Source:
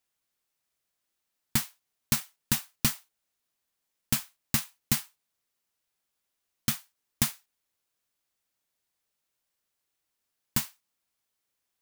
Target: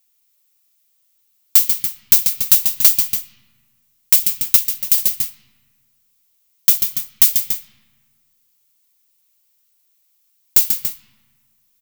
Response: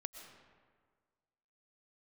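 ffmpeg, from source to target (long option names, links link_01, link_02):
-filter_complex "[0:a]aecho=1:1:139.9|285.7:0.398|0.251,acrossover=split=2300[link_01][link_02];[link_01]acompressor=threshold=-37dB:ratio=6[link_03];[link_03][link_02]amix=inputs=2:normalize=0,equalizer=frequency=630:width_type=o:width=0.67:gain=-3,equalizer=frequency=1600:width_type=o:width=0.67:gain=-7,equalizer=frequency=10000:width_type=o:width=0.67:gain=-5,asettb=1/sr,asplit=3[link_04][link_05][link_06];[link_04]atrim=end=4.564[link_07];[link_05]atrim=start=4.56:end=4.98,asetpts=PTS-STARTPTS,afade=type=in:duration=0.004:curve=qsin,afade=type=out:start_time=0.416:duration=0.004:curve=qsin,tremolo=f=240:d=0.889[link_08];[link_06]atrim=start=4.976[link_09];[link_07][link_08]acrossfade=duration=0.004:curve1=hsin:curve2=qsin[link_10];[link_10][link_09]acrossfade=duration=0.004:curve1=qsin:curve2=hsin,asplit=2[link_11][link_12];[link_12]equalizer=frequency=1900:width=0.56:gain=9.5[link_13];[1:a]atrim=start_sample=2205,lowpass=4400,lowshelf=frequency=190:gain=9.5[link_14];[link_13][link_14]afir=irnorm=-1:irlink=0,volume=-10.5dB[link_15];[link_11][link_15]amix=inputs=2:normalize=0,crystalizer=i=6:c=0,aeval=exprs='2.66*sin(PI/2*2*val(0)/2.66)':channel_layout=same,volume=-9.5dB"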